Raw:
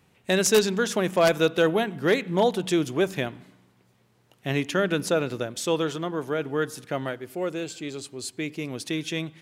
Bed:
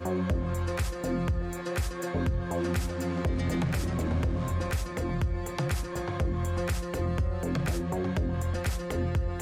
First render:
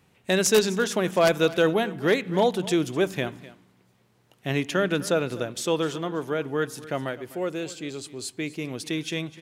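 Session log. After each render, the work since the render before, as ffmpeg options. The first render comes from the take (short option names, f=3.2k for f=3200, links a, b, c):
-af "aecho=1:1:253:0.126"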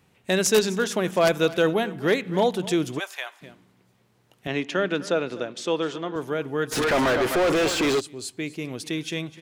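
-filter_complex "[0:a]asplit=3[a][b][c];[a]afade=t=out:st=2.98:d=0.02[d];[b]highpass=f=760:w=0.5412,highpass=f=760:w=1.3066,afade=t=in:st=2.98:d=0.02,afade=t=out:st=3.41:d=0.02[e];[c]afade=t=in:st=3.41:d=0.02[f];[d][e][f]amix=inputs=3:normalize=0,asettb=1/sr,asplit=3[g][h][i];[g]atrim=end=4.474[j];[h]atrim=start=4.47:end=6.16,asetpts=PTS-STARTPTS,afade=t=in:d=0.004:c=qsin,afade=t=out:st=1.686:d=0.004:c=qsin,highpass=200,lowpass=5.6k[k];[i]atrim=start=6.156[l];[j][k]acrossfade=d=0.004:c1=hsin:c2=qsin[m];[m][l]acrossfade=d=0.004:c1=qsin:c2=hsin,asplit=3[n][o][p];[n]afade=t=out:st=6.71:d=0.02[q];[o]asplit=2[r][s];[s]highpass=f=720:p=1,volume=38dB,asoftclip=type=tanh:threshold=-13.5dB[t];[r][t]amix=inputs=2:normalize=0,lowpass=f=2.5k:p=1,volume=-6dB,afade=t=in:st=6.71:d=0.02,afade=t=out:st=7.99:d=0.02[u];[p]afade=t=in:st=7.99:d=0.02[v];[q][u][v]amix=inputs=3:normalize=0"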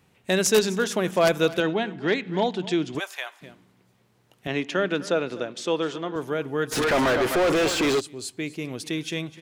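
-filter_complex "[0:a]asettb=1/sr,asplit=3[a][b][c];[a]atrim=end=1.604[d];[b]atrim=start=1.6:end=2.95,asetpts=PTS-STARTPTS,afade=t=in:d=0.004:c=qsin,afade=t=out:st=1.346:d=0.004:c=qsin,highpass=150,equalizer=f=520:t=q:w=4:g=-8,equalizer=f=1.2k:t=q:w=4:g=-5,equalizer=f=5.9k:t=q:w=4:g=-5,lowpass=f=6.4k:w=0.5412,lowpass=f=6.4k:w=1.3066[e];[c]atrim=start=2.946[f];[d][e]acrossfade=d=0.004:c1=hsin:c2=qsin[g];[g][f]acrossfade=d=0.004:c1=qsin:c2=hsin"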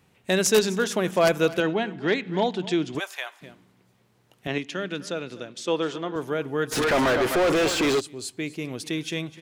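-filter_complex "[0:a]asettb=1/sr,asplit=3[a][b][c];[a]atrim=end=1.214[d];[b]atrim=start=1.21:end=1.94,asetpts=PTS-STARTPTS,afade=t=in:d=0.004:c=qsin,afade=t=out:st=0.726:d=0.004:c=qsin,bandreject=f=3.6k:w=12[e];[c]atrim=start=1.936[f];[d][e]acrossfade=d=0.004:c1=hsin:c2=qsin[g];[g][f]acrossfade=d=0.004:c1=qsin:c2=hsin,asettb=1/sr,asplit=3[h][i][j];[h]atrim=end=4.584[k];[i]atrim=start=4.58:end=5.68,asetpts=PTS-STARTPTS,afade=t=in:d=0.004:c=qsin,afade=t=out:st=1.096:d=0.004:c=qsin,equalizer=f=730:w=0.36:g=-8.5[l];[j]atrim=start=5.676[m];[k][l]acrossfade=d=0.004:c1=hsin:c2=qsin[n];[n][m]acrossfade=d=0.004:c1=qsin:c2=hsin"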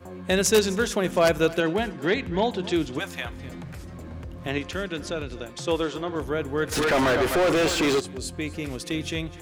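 -filter_complex "[1:a]volume=-10dB[a];[0:a][a]amix=inputs=2:normalize=0"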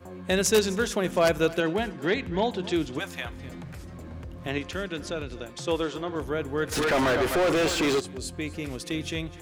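-af "volume=-2dB"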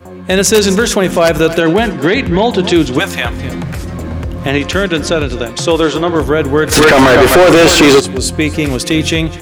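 -af "dynaudnorm=f=260:g=3:m=9.5dB,alimiter=level_in=10dB:limit=-1dB:release=50:level=0:latency=1"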